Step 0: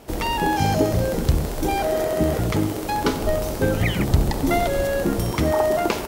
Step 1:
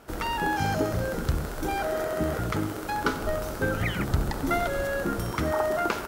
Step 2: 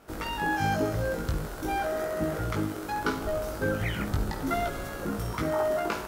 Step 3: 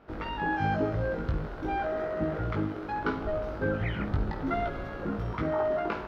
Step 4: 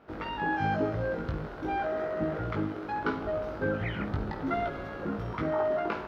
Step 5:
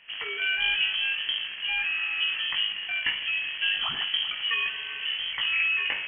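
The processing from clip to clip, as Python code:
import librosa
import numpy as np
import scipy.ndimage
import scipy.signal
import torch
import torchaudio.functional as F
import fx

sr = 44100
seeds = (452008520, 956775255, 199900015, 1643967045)

y1 = fx.peak_eq(x, sr, hz=1400.0, db=11.5, octaves=0.58)
y1 = y1 * 10.0 ** (-7.5 / 20.0)
y2 = fx.doubler(y1, sr, ms=19.0, db=-3.5)
y2 = fx.room_flutter(y2, sr, wall_m=9.1, rt60_s=0.24)
y2 = y2 * 10.0 ** (-4.5 / 20.0)
y3 = fx.air_absorb(y2, sr, metres=310.0)
y4 = fx.highpass(y3, sr, hz=99.0, slope=6)
y5 = fx.freq_invert(y4, sr, carrier_hz=3200)
y5 = y5 + 10.0 ** (-15.0 / 20.0) * np.pad(y5, (int(388 * sr / 1000.0), 0))[:len(y5)]
y5 = y5 * 10.0 ** (2.5 / 20.0)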